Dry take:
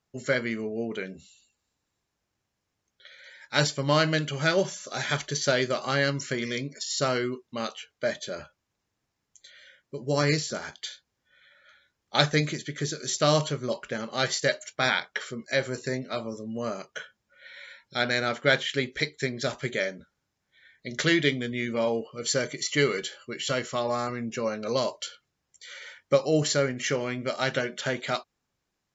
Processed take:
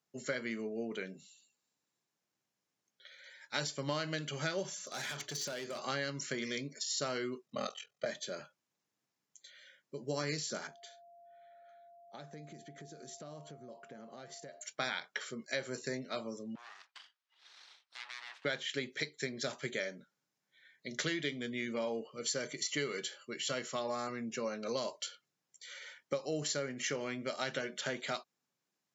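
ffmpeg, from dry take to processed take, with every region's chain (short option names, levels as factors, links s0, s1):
-filter_complex "[0:a]asettb=1/sr,asplit=3[s0][s1][s2];[s0]atrim=end=4.714[s3];[s1]atrim=start=4.71:end=5.79,asetpts=PTS-STARTPTS,afade=t=in:d=0.004:c=qsin,afade=t=out:st=1.076:d=0.004:c=qsin,bandreject=f=60:t=h:w=6,bandreject=f=120:t=h:w=6,bandreject=f=180:t=h:w=6,bandreject=f=240:t=h:w=6,bandreject=f=300:t=h:w=6,bandreject=f=360:t=h:w=6,bandreject=f=420:t=h:w=6,bandreject=f=480:t=h:w=6,acompressor=threshold=0.0447:ratio=12:attack=3.2:release=140:knee=1:detection=peak,volume=31.6,asoftclip=hard,volume=0.0316[s4];[s2]atrim=start=5.786[s5];[s3][s4]acrossfade=d=0.004:c1=hsin:c2=qsin[s6];[s6][s5]acrossfade=d=0.004:c1=qsin:c2=hsin,asettb=1/sr,asplit=3[s7][s8][s9];[s7]atrim=end=7.464[s10];[s8]atrim=start=7.46:end=8.06,asetpts=PTS-STARTPTS,afade=t=in:d=0.004:c=qsin,afade=t=out:st=0.596:d=0.004:c=qsin,lowshelf=f=400:g=5.5,aecho=1:1:1.6:0.85,atrim=end_sample=26460,aeval=exprs='val(0)*sin(2*PI*21*n/s)':c=same[s11];[s9]atrim=start=8.056[s12];[s10][s11]acrossfade=d=0.004:c1=hsin:c2=qsin[s13];[s13][s12]acrossfade=d=0.004:c1=qsin:c2=hsin,asettb=1/sr,asplit=3[s14][s15][s16];[s14]atrim=end=10.674[s17];[s15]atrim=start=10.67:end=14.61,asetpts=PTS-STARTPTS,afade=t=in:d=0.004:c=qsin,afade=t=out:st=3.936:d=0.004:c=qsin,equalizer=f=4200:w=0.33:g=-13.5,acompressor=threshold=0.01:ratio=6:attack=3.2:release=140:knee=1:detection=peak,aeval=exprs='val(0)+0.00355*sin(2*PI*690*n/s)':c=same[s18];[s16]atrim=start=14.606[s19];[s17][s18]acrossfade=d=0.004:c1=hsin:c2=qsin[s20];[s20][s19]acrossfade=d=0.004:c1=qsin:c2=hsin,asettb=1/sr,asplit=3[s21][s22][s23];[s21]atrim=end=16.554[s24];[s22]atrim=start=16.55:end=18.45,asetpts=PTS-STARTPTS,afade=t=in:d=0.004:c=qsin,afade=t=out:st=1.896:d=0.004:c=qsin,acompressor=threshold=0.0126:ratio=2:attack=3.2:release=140:knee=1:detection=peak,aeval=exprs='abs(val(0))':c=same,asuperpass=centerf=2200:order=4:qfactor=0.58[s25];[s23]atrim=start=18.446[s26];[s24][s25]acrossfade=d=0.004:c1=hsin:c2=qsin[s27];[s27][s26]acrossfade=d=0.004:c1=qsin:c2=hsin,highpass=f=140:w=0.5412,highpass=f=140:w=1.3066,highshelf=f=4800:g=5,acompressor=threshold=0.0562:ratio=6,volume=0.447"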